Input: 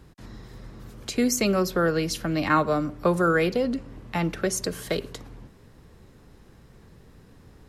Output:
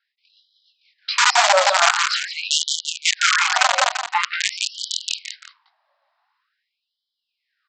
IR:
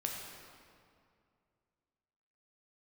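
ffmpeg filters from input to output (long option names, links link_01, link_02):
-filter_complex "[0:a]agate=range=-22dB:threshold=-39dB:ratio=16:detection=peak,flanger=delay=17.5:depth=6.6:speed=2.5,equalizer=frequency=250:width_type=o:width=1:gain=10,equalizer=frequency=500:width_type=o:width=1:gain=5,equalizer=frequency=1000:width_type=o:width=1:gain=5,aresample=11025,aresample=44100,adynamicequalizer=threshold=0.0178:dfrequency=310:dqfactor=5.3:tfrequency=310:tqfactor=5.3:attack=5:release=100:ratio=0.375:range=3:mode=cutabove:tftype=bell,aresample=16000,aeval=exprs='(mod(4.22*val(0)+1,2)-1)/4.22':channel_layout=same,aresample=44100,bandreject=frequency=50:width_type=h:width=6,bandreject=frequency=100:width_type=h:width=6,bandreject=frequency=150:width_type=h:width=6,bandreject=frequency=200:width_type=h:width=6,bandreject=frequency=250:width_type=h:width=6,asplit=2[link_01][link_02];[link_02]aecho=0:1:171|342|513:0.422|0.114|0.0307[link_03];[link_01][link_03]amix=inputs=2:normalize=0,alimiter=level_in=18dB:limit=-1dB:release=50:level=0:latency=1,afftfilt=real='re*gte(b*sr/1024,540*pow(3000/540,0.5+0.5*sin(2*PI*0.46*pts/sr)))':imag='im*gte(b*sr/1024,540*pow(3000/540,0.5+0.5*sin(2*PI*0.46*pts/sr)))':win_size=1024:overlap=0.75,volume=-3.5dB"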